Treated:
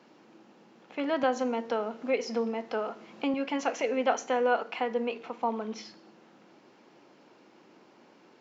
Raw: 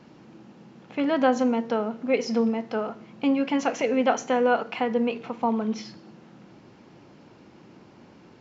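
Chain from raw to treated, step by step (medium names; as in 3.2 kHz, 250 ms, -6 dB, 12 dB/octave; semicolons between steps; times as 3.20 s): high-pass 320 Hz 12 dB/octave; 1.23–3.34 s: three bands compressed up and down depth 40%; trim -3.5 dB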